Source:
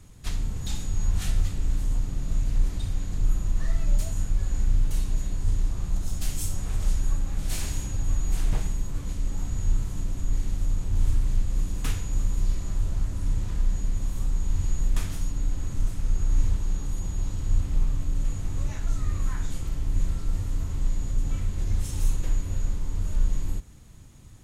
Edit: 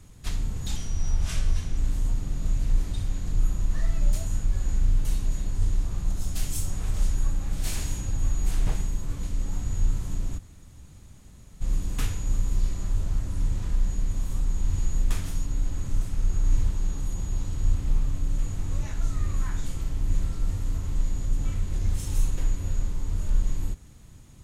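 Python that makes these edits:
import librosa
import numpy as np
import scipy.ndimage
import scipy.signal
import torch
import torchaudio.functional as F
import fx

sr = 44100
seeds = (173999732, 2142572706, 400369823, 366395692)

y = fx.edit(x, sr, fx.speed_span(start_s=0.76, length_s=0.87, speed=0.86),
    fx.room_tone_fill(start_s=10.24, length_s=1.23, crossfade_s=0.02), tone=tone)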